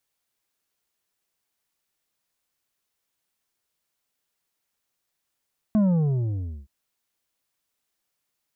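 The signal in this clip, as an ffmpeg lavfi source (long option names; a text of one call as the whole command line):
ffmpeg -f lavfi -i "aevalsrc='0.141*clip((0.92-t)/0.92,0,1)*tanh(2.24*sin(2*PI*220*0.92/log(65/220)*(exp(log(65/220)*t/0.92)-1)))/tanh(2.24)':duration=0.92:sample_rate=44100" out.wav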